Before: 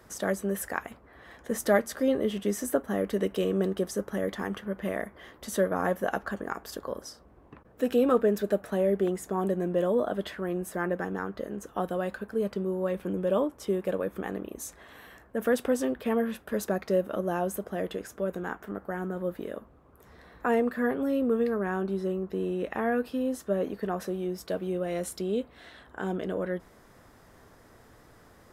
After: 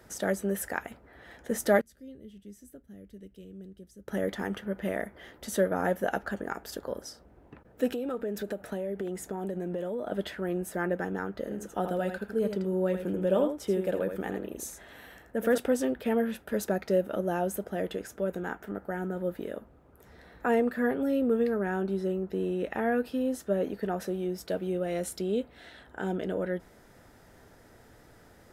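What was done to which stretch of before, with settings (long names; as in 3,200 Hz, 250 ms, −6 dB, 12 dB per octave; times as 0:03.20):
0:01.81–0:04.08: guitar amp tone stack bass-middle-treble 10-0-1
0:07.90–0:10.12: downward compressor 10 to 1, threshold −29 dBFS
0:11.39–0:15.58: single-tap delay 81 ms −7.5 dB
whole clip: notch filter 1,100 Hz, Q 5.4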